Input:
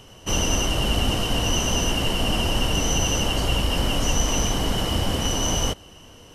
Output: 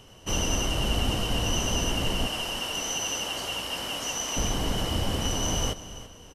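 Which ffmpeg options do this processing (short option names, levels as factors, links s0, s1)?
-filter_complex "[0:a]asettb=1/sr,asplit=3[s0][s1][s2];[s0]atrim=end=2.274[s3];[s1]atrim=start=2.27:end=4.37,asetpts=PTS-STARTPTS,afade=t=in:d=0.004:c=qsin,afade=t=out:st=2.096:d=0.004:c=qsin,highpass=f=750:p=1[s4];[s2]atrim=start=4.366[s5];[s3][s4]acrossfade=d=0.004:c1=hsin:c2=qsin[s6];[s6][s5]acrossfade=d=0.004:c1=qsin:c2=hsin,aecho=1:1:334|668|1002:0.178|0.0605|0.0206,volume=0.596"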